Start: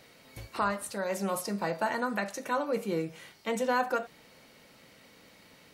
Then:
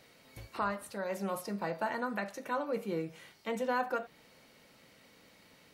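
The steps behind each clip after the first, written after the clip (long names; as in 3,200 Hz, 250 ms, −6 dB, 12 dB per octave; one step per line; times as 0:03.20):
dynamic equaliser 7,700 Hz, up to −7 dB, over −55 dBFS, Q 0.76
level −4 dB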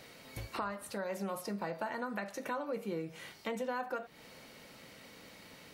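downward compressor 3 to 1, threshold −44 dBFS, peak gain reduction 12.5 dB
level +6.5 dB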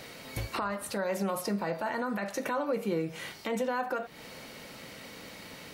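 brickwall limiter −29.5 dBFS, peak gain reduction 7 dB
level +8 dB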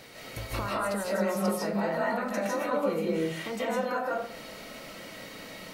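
comb and all-pass reverb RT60 0.58 s, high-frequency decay 0.4×, pre-delay 115 ms, DRR −5.5 dB
level −3.5 dB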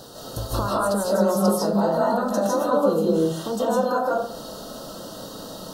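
Butterworth band-reject 2,200 Hz, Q 0.98
level +8.5 dB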